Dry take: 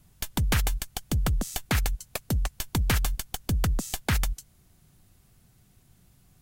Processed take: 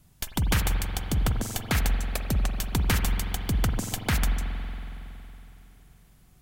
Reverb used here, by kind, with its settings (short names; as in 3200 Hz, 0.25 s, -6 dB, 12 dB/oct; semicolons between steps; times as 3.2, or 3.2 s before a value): spring tank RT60 3.3 s, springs 46 ms, chirp 40 ms, DRR 4.5 dB